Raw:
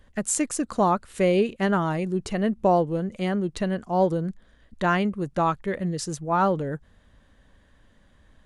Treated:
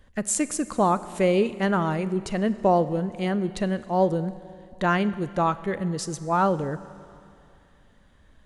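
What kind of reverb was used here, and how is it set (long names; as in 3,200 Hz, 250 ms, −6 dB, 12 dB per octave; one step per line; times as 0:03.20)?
four-comb reverb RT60 2.5 s, combs from 31 ms, DRR 15 dB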